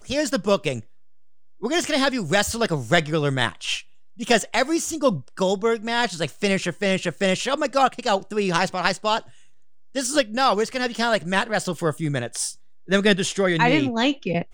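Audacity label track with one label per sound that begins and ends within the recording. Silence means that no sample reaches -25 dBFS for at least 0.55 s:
1.630000	9.190000	sound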